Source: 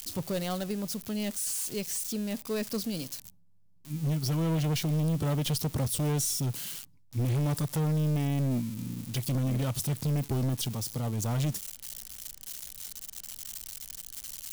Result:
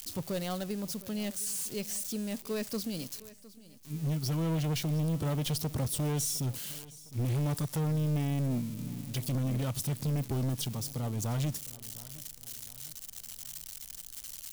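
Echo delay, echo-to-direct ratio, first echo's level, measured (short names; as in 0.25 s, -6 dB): 0.709 s, -18.0 dB, -19.0 dB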